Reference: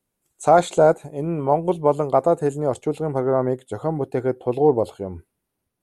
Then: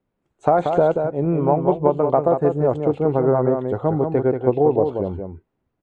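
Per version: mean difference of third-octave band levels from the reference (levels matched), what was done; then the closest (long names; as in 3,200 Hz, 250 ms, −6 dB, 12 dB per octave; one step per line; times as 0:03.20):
5.0 dB: low-pass filter 3,100 Hz 12 dB per octave
high-shelf EQ 2,200 Hz −10 dB
downward compressor 5 to 1, threshold −18 dBFS, peak gain reduction 8 dB
single-tap delay 183 ms −6 dB
level +5 dB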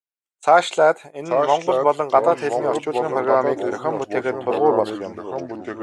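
7.5 dB: noise gate −35 dBFS, range −25 dB
in parallel at +0.5 dB: speech leveller 2 s
on the sum: resonant band-pass 2,300 Hz, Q 0.83
delay with pitch and tempo change per echo 746 ms, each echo −3 semitones, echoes 3, each echo −6 dB
level +4 dB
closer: first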